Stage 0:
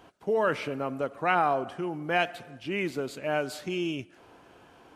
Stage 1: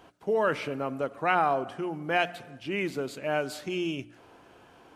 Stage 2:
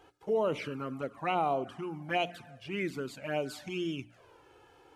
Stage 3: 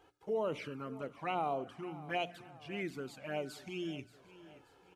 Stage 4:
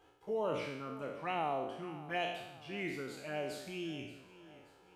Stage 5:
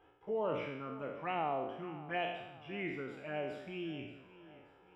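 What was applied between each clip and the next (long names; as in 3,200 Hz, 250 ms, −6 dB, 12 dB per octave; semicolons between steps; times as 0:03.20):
hum removal 58.96 Hz, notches 5
flanger swept by the level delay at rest 2.5 ms, full sweep at −23 dBFS; level −1.5 dB
repeating echo 578 ms, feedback 49%, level −17.5 dB; level −5.5 dB
peak hold with a decay on every bin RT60 0.87 s; level −2 dB
Savitzky-Golay smoothing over 25 samples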